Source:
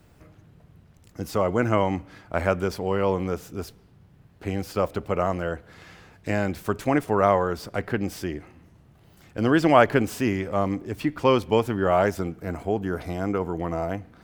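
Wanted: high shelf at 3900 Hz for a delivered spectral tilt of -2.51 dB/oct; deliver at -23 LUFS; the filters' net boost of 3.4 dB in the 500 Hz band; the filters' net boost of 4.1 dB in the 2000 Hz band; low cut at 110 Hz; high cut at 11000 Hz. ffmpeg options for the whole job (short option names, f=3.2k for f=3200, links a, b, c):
-af "highpass=110,lowpass=11k,equalizer=f=500:t=o:g=4,equalizer=f=2k:t=o:g=7,highshelf=f=3.9k:g=-8,volume=-0.5dB"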